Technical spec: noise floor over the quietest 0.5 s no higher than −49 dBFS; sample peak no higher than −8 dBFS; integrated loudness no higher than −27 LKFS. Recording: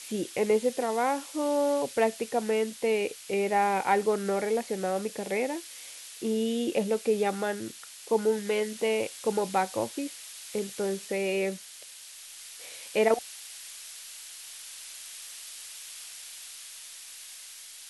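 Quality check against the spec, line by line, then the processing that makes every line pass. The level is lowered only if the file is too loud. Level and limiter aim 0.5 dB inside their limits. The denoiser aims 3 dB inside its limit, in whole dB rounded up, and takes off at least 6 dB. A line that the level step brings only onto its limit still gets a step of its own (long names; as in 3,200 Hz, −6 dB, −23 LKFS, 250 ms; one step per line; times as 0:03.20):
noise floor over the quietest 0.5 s −47 dBFS: out of spec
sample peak −11.5 dBFS: in spec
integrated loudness −29.0 LKFS: in spec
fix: broadband denoise 6 dB, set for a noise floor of −47 dBFS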